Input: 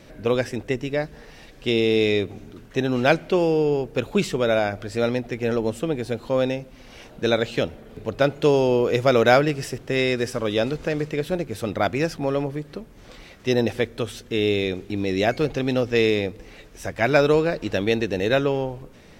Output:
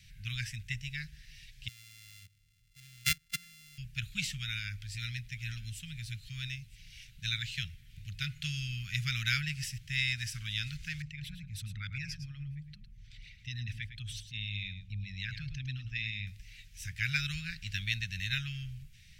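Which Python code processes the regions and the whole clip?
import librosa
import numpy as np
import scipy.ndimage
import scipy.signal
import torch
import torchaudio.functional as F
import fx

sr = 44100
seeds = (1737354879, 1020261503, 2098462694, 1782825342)

y = fx.chain(x, sr, fx.sample_sort(block=64),
    fx.level_steps(step_db=17),
    fx.upward_expand(threshold_db=-36.0, expansion=1.5), at=(1.68, 3.78))
y = fx.chain(y, sr, fx.peak_eq(hz=520.0, db=-9.5, octaves=1.6),
    fx.echo_single(ms=963, db=-21.5), at=(4.39, 8.27))
y = fx.chain(y, sr, fx.envelope_sharpen(power=1.5),
    fx.echo_single(ms=107, db=-10.5), at=(11.02, 16.27))
y = fx.dynamic_eq(y, sr, hz=1500.0, q=1.6, threshold_db=-39.0, ratio=4.0, max_db=5)
y = scipy.signal.sosfilt(scipy.signal.cheby2(4, 60, [320.0, 900.0], 'bandstop', fs=sr, output='sos'), y)
y = y * 10.0 ** (-4.5 / 20.0)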